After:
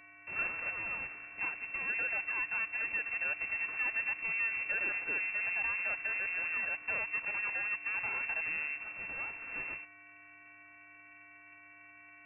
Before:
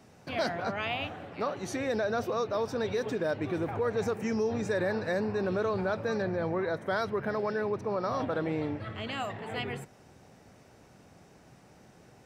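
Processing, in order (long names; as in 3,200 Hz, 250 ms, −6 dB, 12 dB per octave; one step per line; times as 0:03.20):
full-wave rectification
hum with harmonics 400 Hz, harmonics 29, −50 dBFS
voice inversion scrambler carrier 2,700 Hz
level −6.5 dB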